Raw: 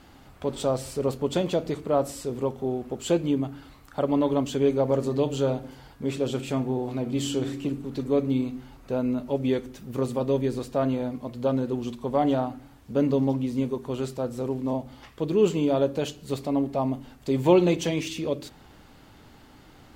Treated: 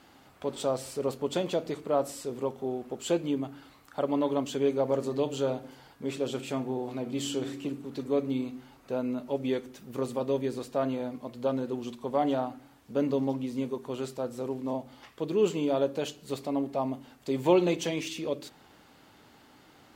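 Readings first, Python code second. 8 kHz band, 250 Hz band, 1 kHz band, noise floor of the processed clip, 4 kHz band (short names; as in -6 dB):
-2.5 dB, -5.5 dB, -3.0 dB, -58 dBFS, -2.5 dB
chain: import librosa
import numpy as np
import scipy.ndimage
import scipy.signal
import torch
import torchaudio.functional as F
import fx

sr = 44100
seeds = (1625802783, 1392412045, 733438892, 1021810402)

y = fx.highpass(x, sr, hz=260.0, slope=6)
y = y * librosa.db_to_amplitude(-2.5)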